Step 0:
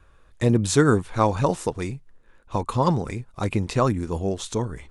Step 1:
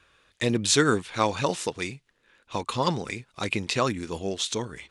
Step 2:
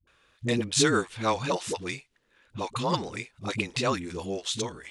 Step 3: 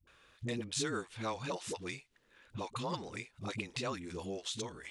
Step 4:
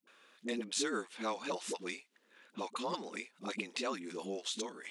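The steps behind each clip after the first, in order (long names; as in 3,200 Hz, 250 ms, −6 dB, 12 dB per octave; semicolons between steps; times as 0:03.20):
meter weighting curve D; level −3.5 dB
all-pass dispersion highs, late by 73 ms, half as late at 330 Hz; level −2 dB
downward compressor 2 to 1, threshold −44 dBFS, peak gain reduction 14 dB
linear-phase brick-wall high-pass 180 Hz; level +1 dB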